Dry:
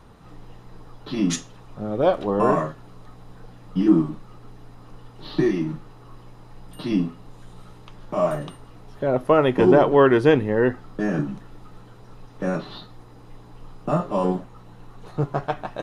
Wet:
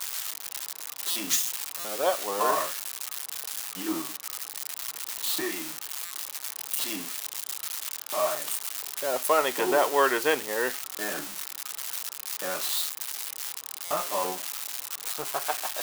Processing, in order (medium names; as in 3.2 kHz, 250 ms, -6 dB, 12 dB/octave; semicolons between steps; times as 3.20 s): zero-crossing glitches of -18.5 dBFS; Bessel high-pass 900 Hz, order 2; buffer glitch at 1.10/1.79/6.05/13.85 s, samples 256, times 9